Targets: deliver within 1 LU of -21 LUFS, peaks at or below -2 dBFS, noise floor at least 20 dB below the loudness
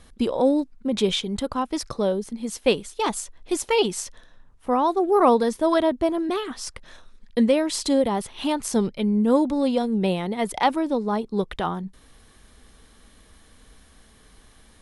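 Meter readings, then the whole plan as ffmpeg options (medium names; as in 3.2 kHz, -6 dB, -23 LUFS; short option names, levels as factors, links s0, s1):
loudness -23.5 LUFS; peak level -6.5 dBFS; loudness target -21.0 LUFS
-> -af "volume=1.33"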